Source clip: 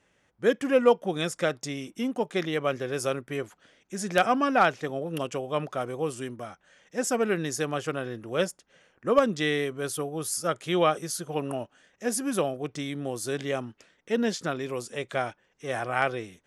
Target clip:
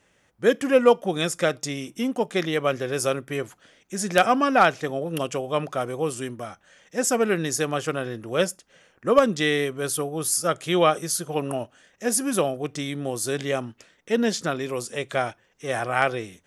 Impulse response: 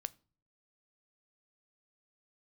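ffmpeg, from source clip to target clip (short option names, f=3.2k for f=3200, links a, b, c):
-filter_complex "[0:a]asplit=2[a][b];[1:a]atrim=start_sample=2205,afade=t=out:st=0.18:d=0.01,atrim=end_sample=8379,highshelf=f=4.6k:g=10[c];[b][c]afir=irnorm=-1:irlink=0,volume=-3dB[d];[a][d]amix=inputs=2:normalize=0"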